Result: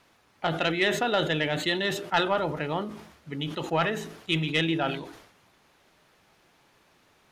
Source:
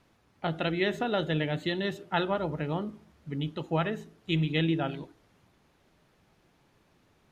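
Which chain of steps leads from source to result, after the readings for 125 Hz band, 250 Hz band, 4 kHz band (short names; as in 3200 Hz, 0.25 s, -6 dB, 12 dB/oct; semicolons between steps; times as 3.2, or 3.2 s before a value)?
-1.5 dB, 0.0 dB, +7.0 dB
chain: low shelf 380 Hz -12 dB; soft clip -19.5 dBFS, distortion -21 dB; sustainer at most 75 dB/s; gain +7.5 dB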